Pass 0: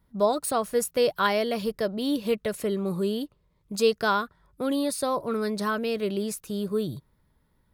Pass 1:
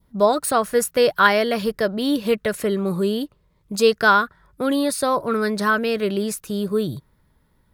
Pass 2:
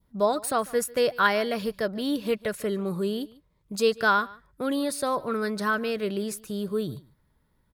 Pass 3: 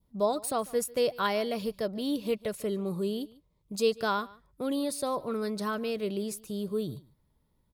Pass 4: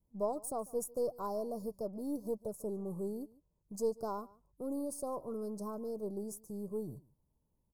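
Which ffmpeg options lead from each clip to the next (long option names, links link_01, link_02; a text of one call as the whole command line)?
ffmpeg -i in.wav -af "adynamicequalizer=threshold=0.00708:dfrequency=1600:dqfactor=1.8:tfrequency=1600:tqfactor=1.8:attack=5:release=100:ratio=0.375:range=3.5:mode=boostabove:tftype=bell,volume=5.5dB" out.wav
ffmpeg -i in.wav -af "aecho=1:1:146:0.0794,volume=-6.5dB" out.wav
ffmpeg -i in.wav -af "equalizer=frequency=1600:width_type=o:width=0.74:gain=-10,volume=-3dB" out.wav
ffmpeg -i in.wav -af "aeval=exprs='if(lt(val(0),0),0.708*val(0),val(0))':channel_layout=same,asuperstop=centerf=2500:order=8:qfactor=0.52,volume=-6dB" out.wav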